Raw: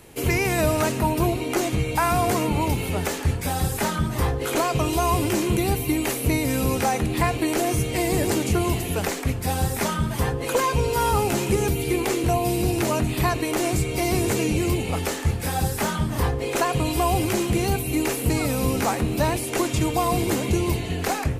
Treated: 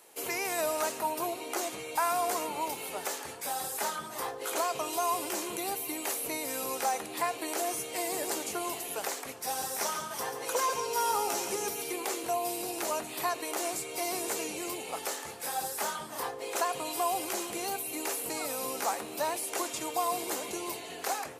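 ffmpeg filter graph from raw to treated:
-filter_complex "[0:a]asettb=1/sr,asplit=3[a][b][c];[a]atrim=end=9.374[d];[b]atrim=start=9.37:end=11.92,asetpts=PTS-STARTPTS,afade=t=in:d=0.004:c=qsin,afade=t=out:st=2.546:d=0.004:c=qsin,equalizer=f=5.7k:w=7:g=7.5,aecho=1:1:137:0.376,atrim=end_sample=112455[e];[c]atrim=start=11.916[f];[d][e]acrossfade=d=0.004:c1=hsin:c2=qsin[g];[g][f]acrossfade=d=0.004:c1=qsin:c2=hsin,highpass=660,equalizer=f=2.3k:t=o:w=1.6:g=-6.5,acontrast=29,volume=-8.5dB"

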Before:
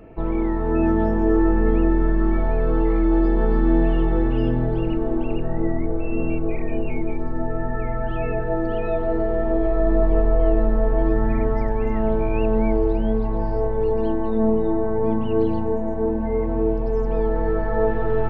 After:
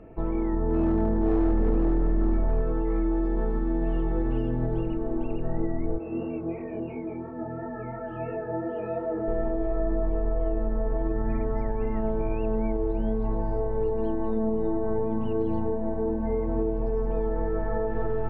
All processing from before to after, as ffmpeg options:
-filter_complex "[0:a]asettb=1/sr,asplit=3[a][b][c];[a]atrim=end=0.534[d];[b]atrim=start=0.53:end=2.62,asetpts=PTS-STARTPTS,afade=t=in:d=0.004:c=qsin,afade=t=out:st=2.086:d=0.004:c=qsin,tiltshelf=f=920:g=4.5,asoftclip=type=hard:threshold=-10dB[e];[c]atrim=start=2.616[f];[d][e]acrossfade=d=0.004:c1=hsin:c2=qsin[g];[g][f]acrossfade=d=0.004:c1=qsin:c2=hsin,asettb=1/sr,asplit=3[h][i][j];[h]atrim=end=5.984[k];[i]atrim=start=5.98:end=9.28,asetpts=PTS-STARTPTS,afade=t=in:d=0.004:c=qsin,afade=t=out:st=3.296:d=0.004:c=qsin,acrusher=bits=8:mix=0:aa=0.5,highpass=120,lowpass=2.6k,flanger=delay=20:depth=4.1:speed=2.9[l];[j]atrim=start=9.276[m];[k][l]acrossfade=d=0.004:c1=hsin:c2=qsin[n];[n][m]acrossfade=d=0.004:c1=qsin:c2=hsin,alimiter=limit=-14.5dB:level=0:latency=1:release=128,lowpass=f=1.7k:p=1,volume=-3dB"

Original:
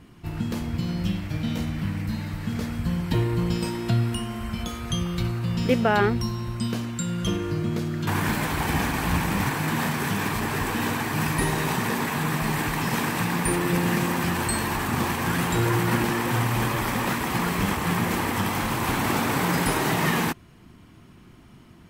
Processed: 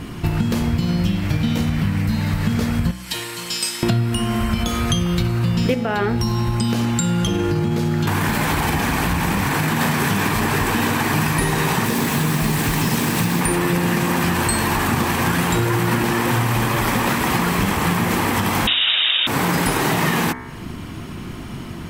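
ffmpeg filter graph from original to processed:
-filter_complex "[0:a]asettb=1/sr,asplit=3[a][b][c];[a]atrim=end=2.914[d];[b]atrim=start=2.91:end=3.83,asetpts=PTS-STARTPTS,afade=t=in:d=0.004:c=qsin,afade=t=out:st=0.916:d=0.004:c=qsin,lowpass=9.9k,aderivative[e];[c]atrim=start=3.826[f];[d][e]acrossfade=d=0.004:c1=hsin:c2=qsin[g];[g][f]acrossfade=d=0.004:c1=qsin:c2=hsin,asettb=1/sr,asplit=3[h][i][j];[h]atrim=end=5.744[k];[i]atrim=start=5.74:end=9.81,asetpts=PTS-STARTPTS,afade=t=in:d=0.004:c=qsin,afade=t=out:st=4.066:d=0.004:c=qsin,acompressor=threshold=-25dB:ratio=5:attack=3.2:release=140:knee=1:detection=peak,aeval=exprs='val(0)+0.00501*sin(2*PI*840*n/s)':c=same[l];[j]atrim=start=9.806[m];[k][l]acrossfade=d=0.004:c1=hsin:c2=qsin[n];[n][m]acrossfade=d=0.004:c1=qsin:c2=hsin,asettb=1/sr,asplit=3[o][p][q];[o]atrim=end=11.854[r];[p]atrim=start=11.85:end=13.41,asetpts=PTS-STARTPTS,afade=t=in:d=0.004:c=qsin,afade=t=out:st=1.556:d=0.004:c=qsin,acrossover=split=460|3000[s][t][u];[t]acompressor=threshold=-37dB:ratio=2:attack=3.2:release=140:knee=2.83:detection=peak[v];[s][v][u]amix=inputs=3:normalize=0,acrusher=bits=5:mix=0:aa=0.5[w];[q]atrim=start=13.406[x];[r][w]acrossfade=d=0.004:c1=hsin:c2=qsin[y];[y][x]acrossfade=d=0.004:c1=qsin:c2=hsin,asettb=1/sr,asplit=3[z][aa][ab];[z]atrim=end=18.674[ac];[aa]atrim=start=18.67:end=19.27,asetpts=PTS-STARTPTS,afade=t=in:d=0.004:c=qsin,afade=t=out:st=0.596:d=0.004:c=qsin,equalizer=f=650:t=o:w=2.3:g=9,lowpass=f=3.3k:t=q:w=0.5098,lowpass=f=3.3k:t=q:w=0.6013,lowpass=f=3.3k:t=q:w=0.9,lowpass=f=3.3k:t=q:w=2.563,afreqshift=-3900[ad];[ab]atrim=start=19.266[ae];[ac][ad]acrossfade=d=0.004:c1=hsin:c2=qsin[af];[af][ae]acrossfade=d=0.004:c1=qsin:c2=hsin,bandreject=f=62.35:t=h:w=4,bandreject=f=124.7:t=h:w=4,bandreject=f=187.05:t=h:w=4,bandreject=f=249.4:t=h:w=4,bandreject=f=311.75:t=h:w=4,bandreject=f=374.1:t=h:w=4,bandreject=f=436.45:t=h:w=4,bandreject=f=498.8:t=h:w=4,bandreject=f=561.15:t=h:w=4,bandreject=f=623.5:t=h:w=4,bandreject=f=685.85:t=h:w=4,bandreject=f=748.2:t=h:w=4,bandreject=f=810.55:t=h:w=4,bandreject=f=872.9:t=h:w=4,bandreject=f=935.25:t=h:w=4,bandreject=f=997.6:t=h:w=4,bandreject=f=1.05995k:t=h:w=4,bandreject=f=1.1223k:t=h:w=4,bandreject=f=1.18465k:t=h:w=4,bandreject=f=1.247k:t=h:w=4,bandreject=f=1.30935k:t=h:w=4,bandreject=f=1.3717k:t=h:w=4,bandreject=f=1.43405k:t=h:w=4,bandreject=f=1.4964k:t=h:w=4,bandreject=f=1.55875k:t=h:w=4,bandreject=f=1.6211k:t=h:w=4,bandreject=f=1.68345k:t=h:w=4,bandreject=f=1.7458k:t=h:w=4,bandreject=f=1.80815k:t=h:w=4,bandreject=f=1.8705k:t=h:w=4,bandreject=f=1.93285k:t=h:w=4,bandreject=f=1.9952k:t=h:w=4,bandreject=f=2.05755k:t=h:w=4,bandreject=f=2.1199k:t=h:w=4,bandreject=f=2.18225k:t=h:w=4,bandreject=f=2.2446k:t=h:w=4,bandreject=f=2.30695k:t=h:w=4,acompressor=threshold=-36dB:ratio=6,alimiter=level_in=24.5dB:limit=-1dB:release=50:level=0:latency=1,volume=-5.5dB"

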